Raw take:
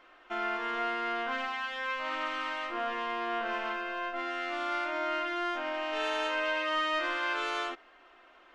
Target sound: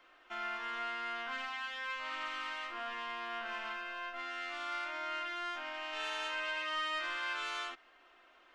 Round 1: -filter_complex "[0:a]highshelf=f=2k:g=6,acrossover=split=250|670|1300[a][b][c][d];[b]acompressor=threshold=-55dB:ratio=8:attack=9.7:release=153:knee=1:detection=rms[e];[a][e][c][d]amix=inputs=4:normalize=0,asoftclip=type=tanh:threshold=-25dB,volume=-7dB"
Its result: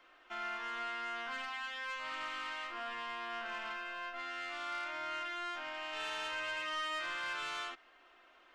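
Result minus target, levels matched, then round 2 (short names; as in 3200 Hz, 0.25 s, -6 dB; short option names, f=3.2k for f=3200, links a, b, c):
soft clip: distortion +11 dB
-filter_complex "[0:a]highshelf=f=2k:g=6,acrossover=split=250|670|1300[a][b][c][d];[b]acompressor=threshold=-55dB:ratio=8:attack=9.7:release=153:knee=1:detection=rms[e];[a][e][c][d]amix=inputs=4:normalize=0,asoftclip=type=tanh:threshold=-18dB,volume=-7dB"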